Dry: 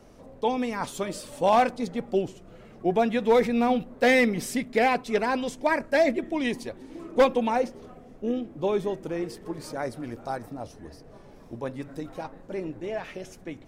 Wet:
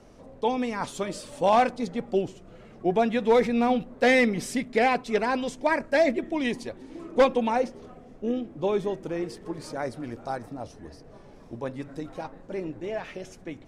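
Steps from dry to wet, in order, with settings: LPF 9800 Hz 12 dB/oct

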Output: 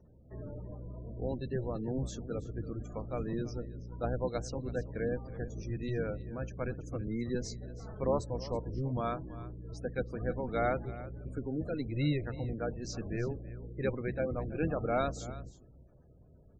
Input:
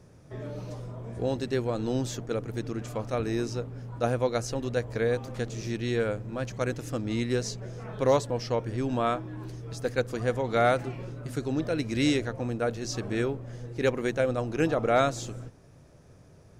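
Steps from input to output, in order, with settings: octaver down 1 oct, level +1 dB; spectral gate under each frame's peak -25 dB strong; echo 0.328 s -16.5 dB; gain -8 dB

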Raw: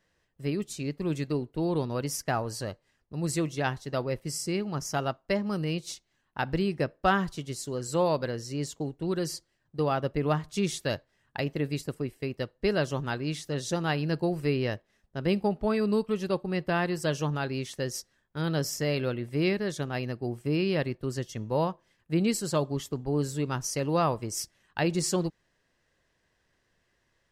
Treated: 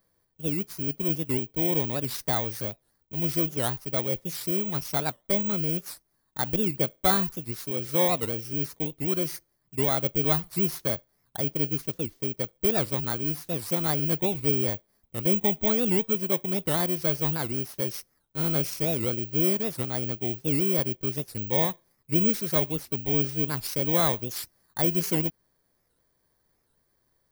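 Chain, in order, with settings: FFT order left unsorted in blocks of 16 samples; careless resampling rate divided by 2×, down filtered, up zero stuff; record warp 78 rpm, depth 250 cents

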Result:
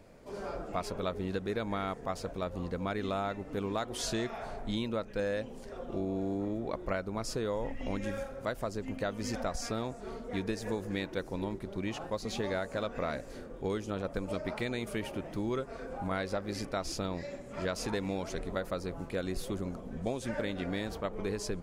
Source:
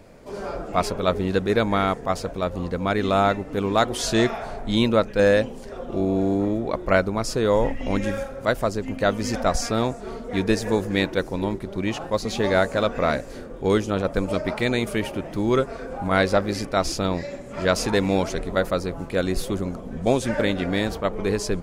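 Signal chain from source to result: compressor, threshold -22 dBFS, peak gain reduction 9 dB; gain -8 dB

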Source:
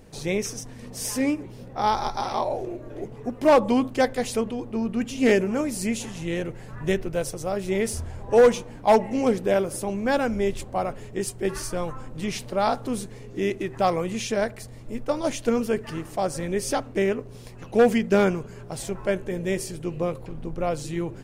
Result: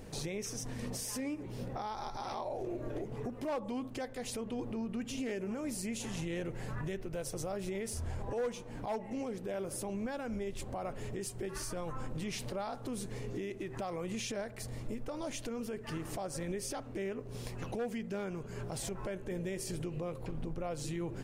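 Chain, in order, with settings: compressor 8:1, threshold -33 dBFS, peak gain reduction 19.5 dB; limiter -31 dBFS, peak gain reduction 9 dB; gain +1 dB

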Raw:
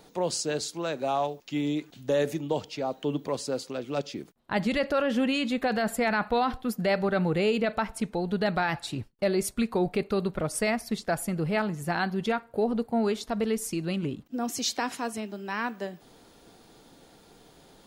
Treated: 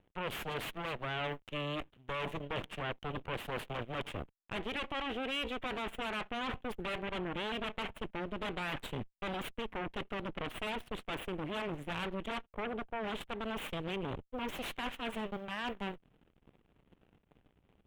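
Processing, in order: backlash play -43.5 dBFS; reverse; compressor 6:1, threshold -34 dBFS, peak gain reduction 12.5 dB; reverse; added harmonics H 7 -33 dB, 8 -6 dB, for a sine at -23.5 dBFS; resonant high shelf 3900 Hz -8.5 dB, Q 3; gain -7 dB

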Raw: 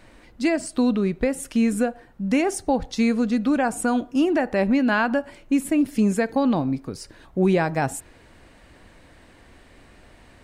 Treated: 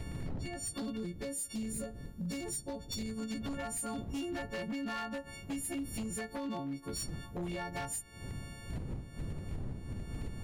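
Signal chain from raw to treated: frequency quantiser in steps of 4 st; wind noise 140 Hz -26 dBFS; compressor 12:1, threshold -29 dBFS, peak gain reduction 22 dB; wavefolder -26.5 dBFS; spectral gain 0.96–3.18, 610–3500 Hz -6 dB; gain -5.5 dB

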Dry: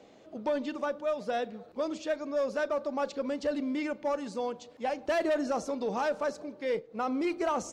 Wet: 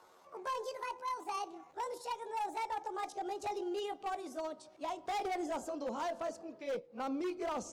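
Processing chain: gliding pitch shift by +10.5 st ending unshifted; dynamic EQ 1800 Hz, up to -8 dB, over -51 dBFS, Q 2; wavefolder -26.5 dBFS; gain -5 dB

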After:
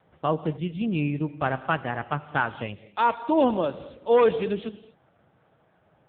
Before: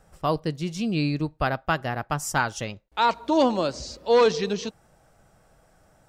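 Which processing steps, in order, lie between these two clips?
on a send at -13.5 dB: reverb, pre-delay 3 ms; on the sum: AMR-NB 6.7 kbps 8000 Hz

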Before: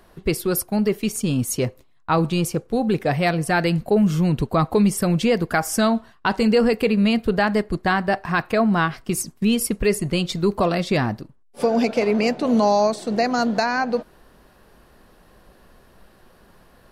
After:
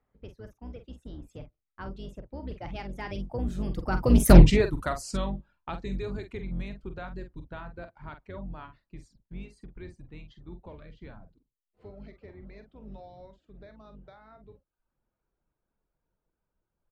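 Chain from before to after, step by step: octaver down 2 oct, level +4 dB; Doppler pass-by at 4.36, 50 m/s, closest 3.4 m; reverb removal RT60 0.6 s; in parallel at 0 dB: compressor, threshold -47 dBFS, peak gain reduction 30.5 dB; on the sum: doubler 46 ms -9 dB; low-pass opened by the level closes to 2300 Hz, open at -31 dBFS; Doppler distortion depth 0.36 ms; gain +5 dB

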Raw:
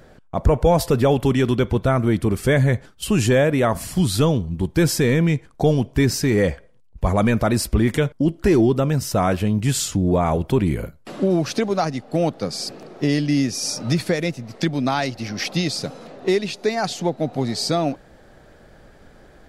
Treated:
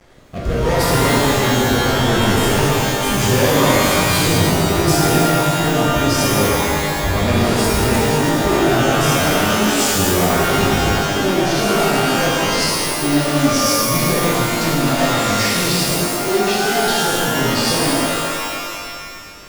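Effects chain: 9.32–9.81 HPF 120 Hz -> 370 Hz 24 dB/oct; sample leveller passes 5; rotary speaker horn 0.8 Hz, later 7.5 Hz, at 3.52; shimmer reverb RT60 1.9 s, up +12 st, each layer -2 dB, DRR -6.5 dB; gain -12.5 dB

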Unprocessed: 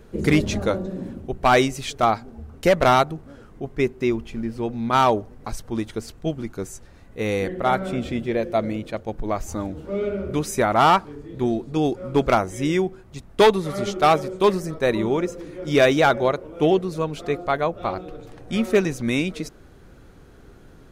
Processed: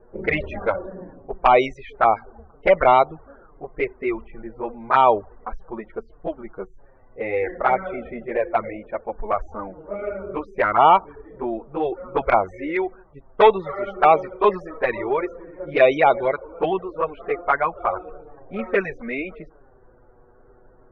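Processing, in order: loudest bins only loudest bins 64; graphic EQ 125/250/500/1000/2000/4000/8000 Hz -9/-7/+4/+7/+9/-6/-10 dB; envelope flanger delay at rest 8.6 ms, full sweep at -8.5 dBFS; low-pass opened by the level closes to 800 Hz, open at -12.5 dBFS

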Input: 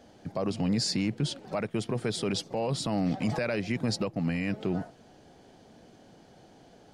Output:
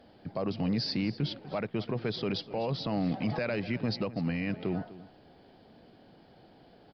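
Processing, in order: echo 0.25 s -17 dB; downsampling 11025 Hz; gain -2 dB; Nellymoser 88 kbps 44100 Hz

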